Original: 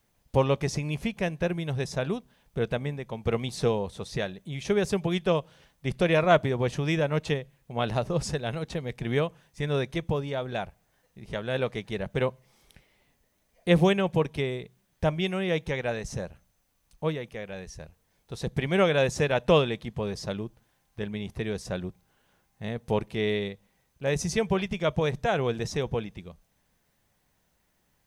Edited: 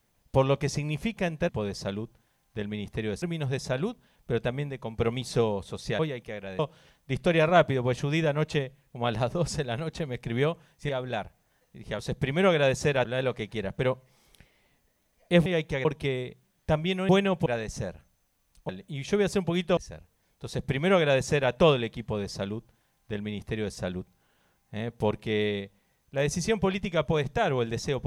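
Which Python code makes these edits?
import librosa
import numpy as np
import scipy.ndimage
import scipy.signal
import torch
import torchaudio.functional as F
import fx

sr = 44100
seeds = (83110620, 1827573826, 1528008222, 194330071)

y = fx.edit(x, sr, fx.swap(start_s=4.26, length_s=1.08, other_s=17.05, other_length_s=0.6),
    fx.cut(start_s=9.64, length_s=0.67),
    fx.swap(start_s=13.82, length_s=0.37, other_s=15.43, other_length_s=0.39),
    fx.duplicate(start_s=18.34, length_s=1.06, to_s=11.41),
    fx.duplicate(start_s=19.91, length_s=1.73, to_s=1.49), tone=tone)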